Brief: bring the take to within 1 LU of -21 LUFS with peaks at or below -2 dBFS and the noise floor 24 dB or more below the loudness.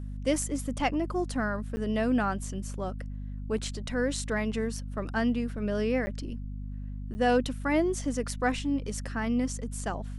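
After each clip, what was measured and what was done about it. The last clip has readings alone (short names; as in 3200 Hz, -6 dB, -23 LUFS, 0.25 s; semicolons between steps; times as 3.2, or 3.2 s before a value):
dropouts 3; longest dropout 10 ms; hum 50 Hz; harmonics up to 250 Hz; hum level -34 dBFS; loudness -30.5 LUFS; peak -13.5 dBFS; loudness target -21.0 LUFS
-> interpolate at 1.76/6.06/7.14, 10 ms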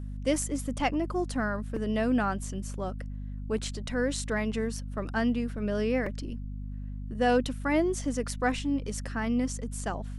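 dropouts 0; hum 50 Hz; harmonics up to 250 Hz; hum level -34 dBFS
-> notches 50/100/150/200/250 Hz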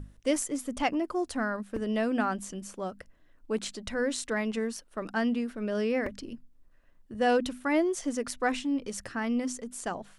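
hum none; loudness -31.0 LUFS; peak -14.5 dBFS; loudness target -21.0 LUFS
-> gain +10 dB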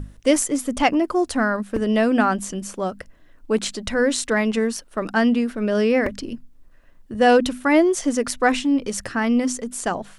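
loudness -21.0 LUFS; peak -4.5 dBFS; noise floor -50 dBFS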